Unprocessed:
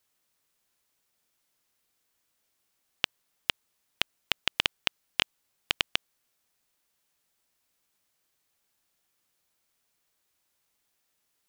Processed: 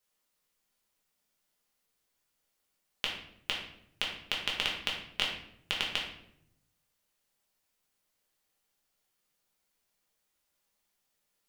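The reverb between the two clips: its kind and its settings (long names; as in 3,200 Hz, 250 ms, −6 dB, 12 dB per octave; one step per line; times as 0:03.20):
rectangular room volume 150 cubic metres, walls mixed, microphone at 1.3 metres
level −7 dB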